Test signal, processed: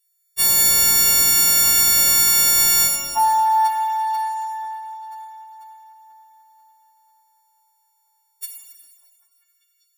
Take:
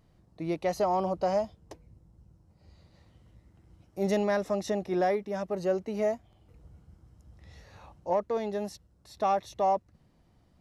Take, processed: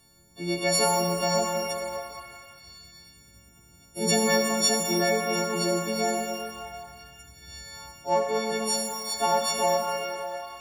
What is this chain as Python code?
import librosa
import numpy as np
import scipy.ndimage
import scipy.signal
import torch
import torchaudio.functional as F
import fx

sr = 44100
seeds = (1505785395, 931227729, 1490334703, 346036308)

y = fx.freq_snap(x, sr, grid_st=4)
y = fx.high_shelf(y, sr, hz=2700.0, db=11.5)
y = fx.echo_stepped(y, sr, ms=197, hz=250.0, octaves=0.7, feedback_pct=70, wet_db=-5.5)
y = fx.rev_shimmer(y, sr, seeds[0], rt60_s=1.7, semitones=12, shimmer_db=-8, drr_db=2.5)